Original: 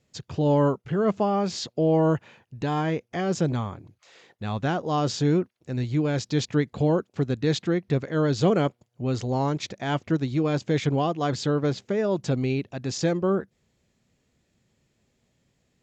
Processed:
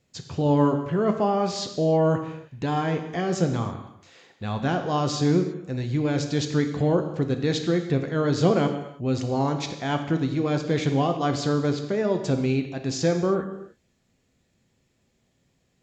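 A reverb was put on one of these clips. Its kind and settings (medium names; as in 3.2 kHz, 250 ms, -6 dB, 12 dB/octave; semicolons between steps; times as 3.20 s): gated-style reverb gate 350 ms falling, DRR 5.5 dB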